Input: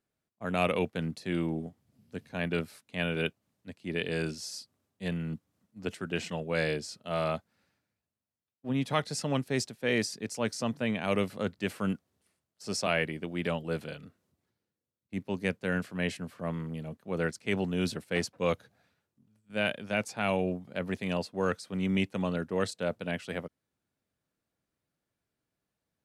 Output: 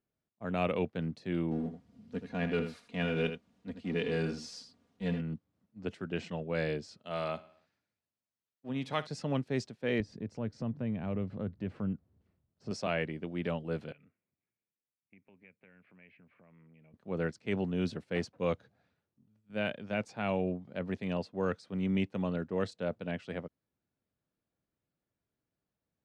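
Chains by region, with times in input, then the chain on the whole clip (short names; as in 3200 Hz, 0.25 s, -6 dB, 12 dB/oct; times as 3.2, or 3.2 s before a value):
1.51–5.21 G.711 law mismatch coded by mu + comb 4.2 ms, depth 57% + echo 79 ms -9 dB
6.99–9.07 tilt +2 dB/oct + feedback echo 60 ms, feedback 56%, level -18.5 dB
10–12.71 RIAA curve playback + compressor 2:1, threshold -36 dBFS
13.92–16.94 bell 63 Hz -12 dB 0.54 oct + compressor, threshold -44 dBFS + ladder low-pass 2500 Hz, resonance 75%
whole clip: LPF 5300 Hz 12 dB/oct; tilt shelf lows +3 dB; gain -4.5 dB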